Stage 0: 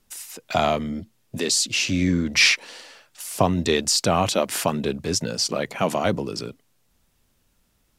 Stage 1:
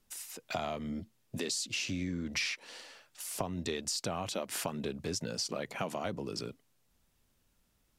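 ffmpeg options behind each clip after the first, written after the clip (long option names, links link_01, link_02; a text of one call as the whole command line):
ffmpeg -i in.wav -af "acompressor=threshold=-25dB:ratio=6,volume=-7dB" out.wav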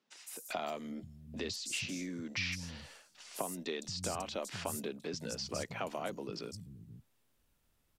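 ffmpeg -i in.wav -filter_complex "[0:a]acrossover=split=180|5900[link_01][link_02][link_03];[link_03]adelay=160[link_04];[link_01]adelay=480[link_05];[link_05][link_02][link_04]amix=inputs=3:normalize=0,volume=-2dB" out.wav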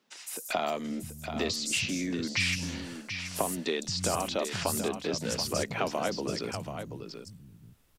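ffmpeg -i in.wav -af "aecho=1:1:732:0.376,volume=8dB" out.wav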